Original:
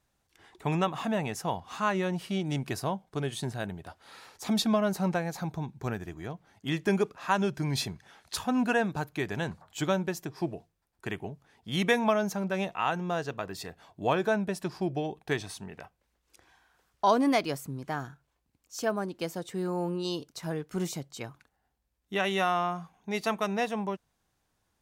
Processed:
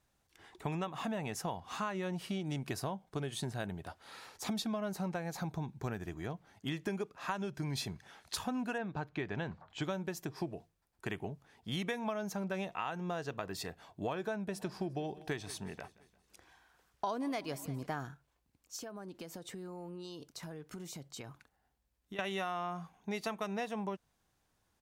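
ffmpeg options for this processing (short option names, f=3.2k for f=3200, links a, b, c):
-filter_complex "[0:a]asettb=1/sr,asplit=3[a][b][c];[a]atrim=end=8.784[d];[b]atrim=start=8.78:end=9.82,asetpts=PTS-STARTPTS,afade=t=in:d=0.004:c=qsin,afade=t=out:st=1.036:d=0.004:c=qsin,lowpass=3.5k[e];[c]atrim=start=9.816[f];[d][e]acrossfade=d=0.004:c1=hsin:c2=qsin[g];[g][f]acrossfade=d=0.004:c1=qsin:c2=hsin,asplit=3[h][i][j];[h]afade=t=out:st=14.51:d=0.02[k];[i]aecho=1:1:174|348|522|696:0.0794|0.0421|0.0223|0.0118,afade=t=in:st=14.51:d=0.02,afade=t=out:st=17.85:d=0.02[l];[j]afade=t=in:st=17.85:d=0.02[m];[k][l][m]amix=inputs=3:normalize=0,asettb=1/sr,asplit=3[n][o][p];[n]atrim=end=18.764[q];[o]atrim=start=18.76:end=22.19,asetpts=PTS-STARTPTS,afade=t=in:d=0.004:c=qsin,afade=t=out:st=3.426:d=0.004:c=qsin,acompressor=threshold=-40dB:ratio=20:attack=3.2:release=140:knee=1:detection=peak[r];[p]atrim=start=22.186[s];[q][r]acrossfade=d=0.004:c1=hsin:c2=qsin[t];[t][s]acrossfade=d=0.004:c1=qsin:c2=hsin,acompressor=threshold=-33dB:ratio=6,volume=-1dB"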